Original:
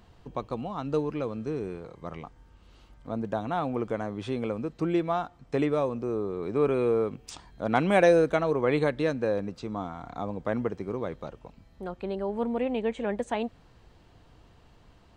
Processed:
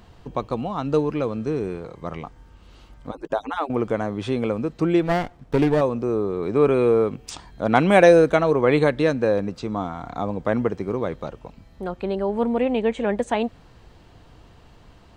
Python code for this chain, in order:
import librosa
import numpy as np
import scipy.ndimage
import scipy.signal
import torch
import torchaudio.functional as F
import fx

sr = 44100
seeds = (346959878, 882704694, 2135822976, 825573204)

y = fx.hpss_only(x, sr, part='percussive', at=(3.11, 3.7))
y = fx.running_max(y, sr, window=17, at=(5.02, 5.81))
y = y * librosa.db_to_amplitude(7.0)